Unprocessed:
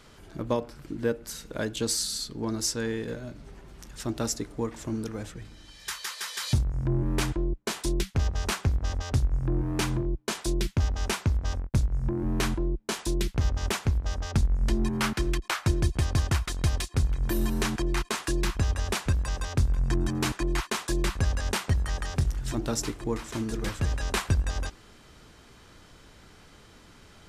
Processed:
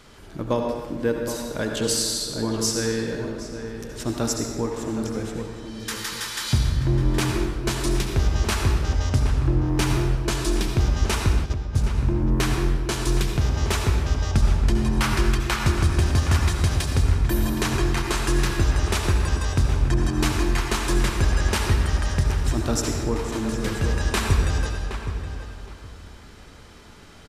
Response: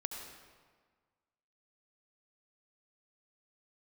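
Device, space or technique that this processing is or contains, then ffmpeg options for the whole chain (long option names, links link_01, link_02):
stairwell: -filter_complex "[1:a]atrim=start_sample=2205[link_01];[0:a][link_01]afir=irnorm=-1:irlink=0,asplit=3[link_02][link_03][link_04];[link_02]afade=type=out:start_time=11.44:duration=0.02[link_05];[link_03]agate=range=-14dB:threshold=-24dB:ratio=16:detection=peak,afade=type=in:start_time=11.44:duration=0.02,afade=type=out:start_time=11.94:duration=0.02[link_06];[link_04]afade=type=in:start_time=11.94:duration=0.02[link_07];[link_05][link_06][link_07]amix=inputs=3:normalize=0,asplit=2[link_08][link_09];[link_09]adelay=769,lowpass=frequency=2400:poles=1,volume=-9dB,asplit=2[link_10][link_11];[link_11]adelay=769,lowpass=frequency=2400:poles=1,volume=0.22,asplit=2[link_12][link_13];[link_13]adelay=769,lowpass=frequency=2400:poles=1,volume=0.22[link_14];[link_08][link_10][link_12][link_14]amix=inputs=4:normalize=0,volume=5.5dB"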